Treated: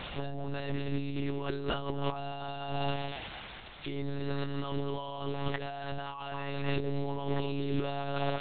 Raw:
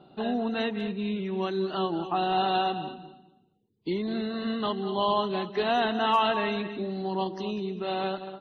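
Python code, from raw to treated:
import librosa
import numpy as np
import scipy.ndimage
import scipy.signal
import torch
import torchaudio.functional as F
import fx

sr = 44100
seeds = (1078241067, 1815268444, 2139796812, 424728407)

y = x + 0.5 * 10.0 ** (-29.0 / 20.0) * np.diff(np.sign(x), prepend=np.sign(x[:1]))
y = fx.over_compress(y, sr, threshold_db=-36.0, ratio=-1.0)
y = fx.lpc_monotone(y, sr, seeds[0], pitch_hz=140.0, order=10)
y = y * librosa.db_to_amplitude(2.0)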